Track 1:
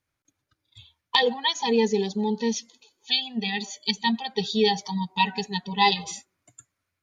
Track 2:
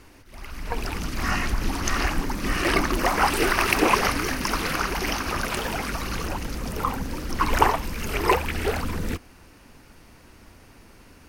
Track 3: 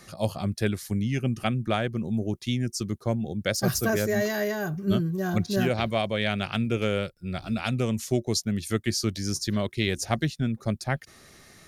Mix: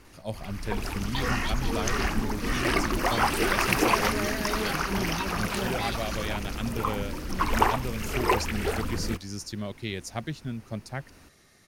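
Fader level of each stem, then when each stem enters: -14.0 dB, -3.5 dB, -7.5 dB; 0.00 s, 0.00 s, 0.05 s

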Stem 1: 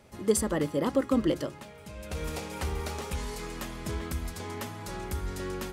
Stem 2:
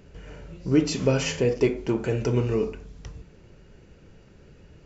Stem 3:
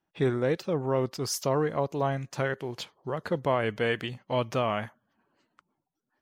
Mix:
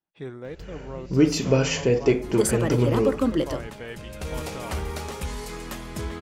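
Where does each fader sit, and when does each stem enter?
+2.5 dB, +2.0 dB, -10.5 dB; 2.10 s, 0.45 s, 0.00 s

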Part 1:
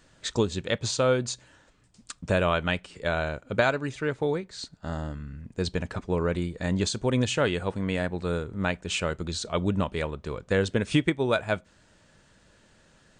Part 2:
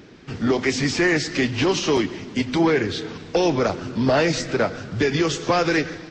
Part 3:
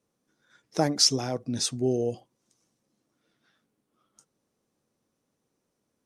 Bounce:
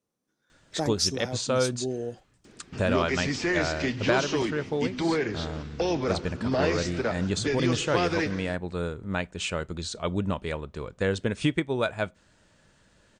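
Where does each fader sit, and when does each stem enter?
-2.0 dB, -7.5 dB, -5.5 dB; 0.50 s, 2.45 s, 0.00 s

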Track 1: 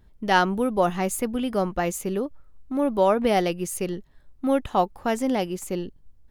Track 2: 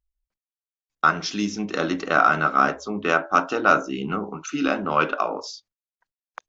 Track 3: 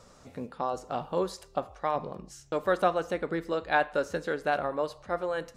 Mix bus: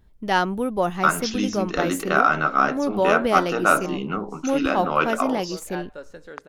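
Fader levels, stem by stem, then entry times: -1.0 dB, -0.5 dB, -10.0 dB; 0.00 s, 0.00 s, 2.00 s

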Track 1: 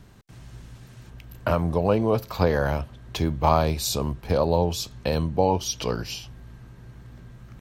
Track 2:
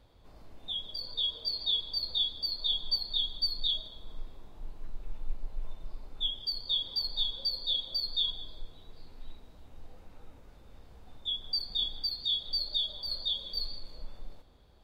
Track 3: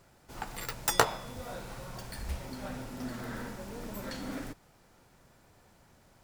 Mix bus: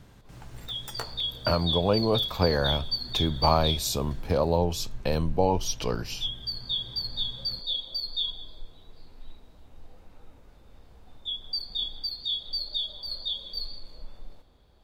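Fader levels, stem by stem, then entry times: -2.5 dB, +0.5 dB, -13.5 dB; 0.00 s, 0.00 s, 0.00 s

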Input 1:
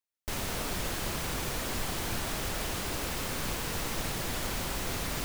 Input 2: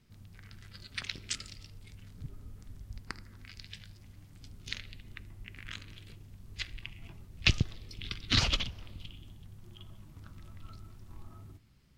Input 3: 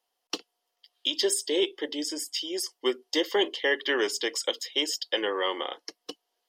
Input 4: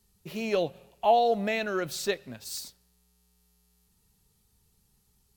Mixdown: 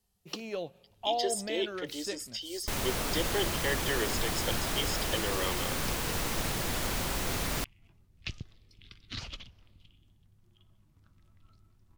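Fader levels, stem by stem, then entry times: +1.5 dB, -13.5 dB, -7.0 dB, -9.5 dB; 2.40 s, 0.80 s, 0.00 s, 0.00 s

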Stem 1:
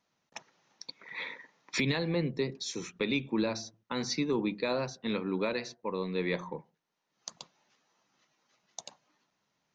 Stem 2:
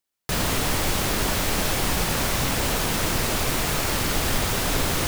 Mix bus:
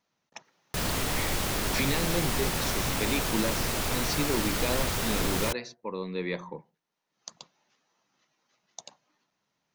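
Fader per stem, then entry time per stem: -0.5 dB, -5.5 dB; 0.00 s, 0.45 s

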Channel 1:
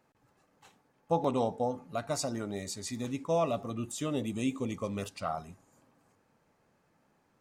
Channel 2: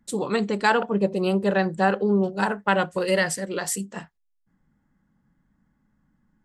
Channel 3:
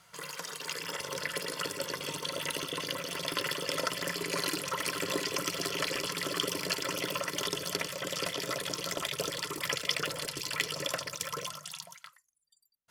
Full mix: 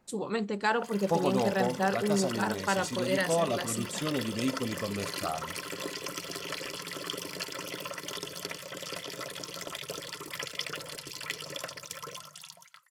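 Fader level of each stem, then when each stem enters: +0.5 dB, -7.5 dB, -4.5 dB; 0.00 s, 0.00 s, 0.70 s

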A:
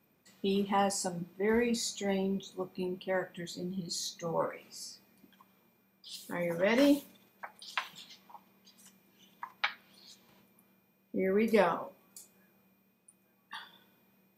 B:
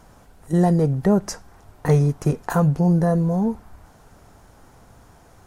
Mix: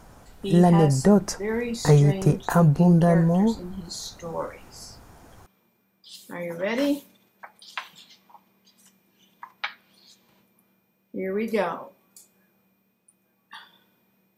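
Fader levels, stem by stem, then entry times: +1.5 dB, +0.5 dB; 0.00 s, 0.00 s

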